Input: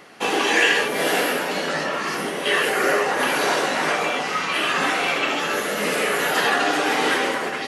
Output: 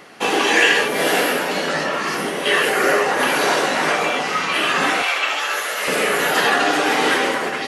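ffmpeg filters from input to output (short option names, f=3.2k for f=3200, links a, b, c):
-filter_complex "[0:a]asettb=1/sr,asplit=3[a][b][c];[a]atrim=end=5.024[d];[b]atrim=start=5.02:end=5.88,asetpts=PTS-STARTPTS,afade=t=in:d=0.004:c=qsin,afade=t=out:st=0.856:d=0.004:c=qsin,highpass=760[e];[c]atrim=start=5.876[f];[d][e]acrossfade=d=0.004:c1=hsin:c2=qsin[g];[g][f]acrossfade=d=0.004:c1=qsin:c2=hsin,volume=3dB"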